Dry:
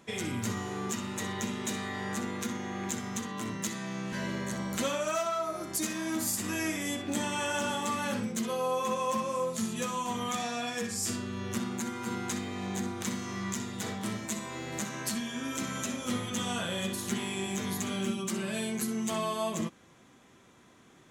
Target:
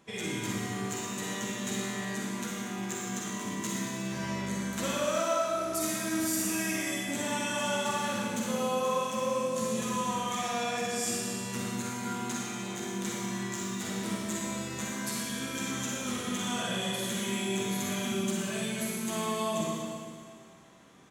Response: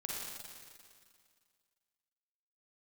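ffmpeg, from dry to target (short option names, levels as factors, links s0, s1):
-filter_complex "[0:a]asplit=2[s0][s1];[s1]adelay=15,volume=0.282[s2];[s0][s2]amix=inputs=2:normalize=0[s3];[1:a]atrim=start_sample=2205[s4];[s3][s4]afir=irnorm=-1:irlink=0"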